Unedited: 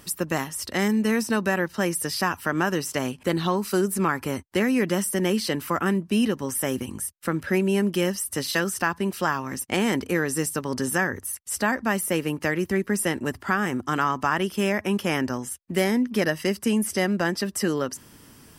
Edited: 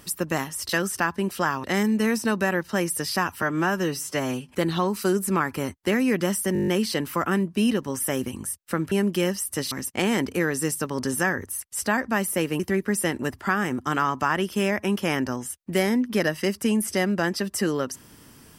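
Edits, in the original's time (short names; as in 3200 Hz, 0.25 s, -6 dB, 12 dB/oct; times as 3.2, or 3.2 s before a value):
2.47–3.2 stretch 1.5×
5.22 stutter 0.02 s, 8 plays
7.46–7.71 cut
8.51–9.46 move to 0.69
12.34–12.61 cut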